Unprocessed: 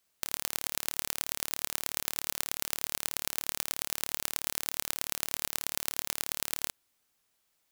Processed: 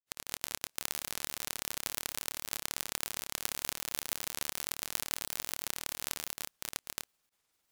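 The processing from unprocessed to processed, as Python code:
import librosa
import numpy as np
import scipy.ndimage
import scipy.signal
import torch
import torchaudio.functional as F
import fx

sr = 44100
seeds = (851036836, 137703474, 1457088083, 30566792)

y = fx.granulator(x, sr, seeds[0], grain_ms=100.0, per_s=20.0, spray_ms=795.0, spread_st=0)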